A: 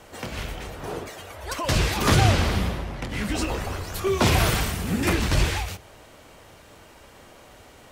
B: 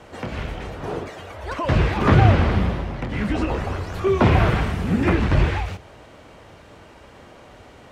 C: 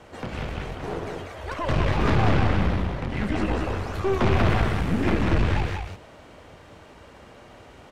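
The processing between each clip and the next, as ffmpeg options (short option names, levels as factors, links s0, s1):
-filter_complex "[0:a]highpass=f=250:p=1,aemphasis=mode=reproduction:type=bsi,acrossover=split=2800[s0][s1];[s1]acompressor=threshold=0.00398:ratio=4:attack=1:release=60[s2];[s0][s2]amix=inputs=2:normalize=0,volume=1.5"
-af "aeval=exprs='(tanh(7.94*val(0)+0.65)-tanh(0.65))/7.94':c=same,aecho=1:1:191:0.668"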